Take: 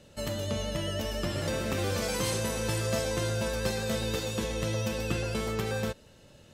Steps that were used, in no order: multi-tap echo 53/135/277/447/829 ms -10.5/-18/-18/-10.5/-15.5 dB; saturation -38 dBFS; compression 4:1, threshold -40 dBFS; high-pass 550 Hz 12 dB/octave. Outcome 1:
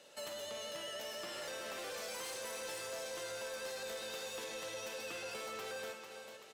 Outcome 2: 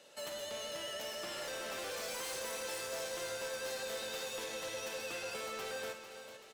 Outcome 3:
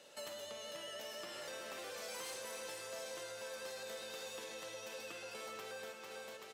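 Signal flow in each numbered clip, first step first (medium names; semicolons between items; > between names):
high-pass > compression > multi-tap echo > saturation; high-pass > saturation > compression > multi-tap echo; multi-tap echo > compression > high-pass > saturation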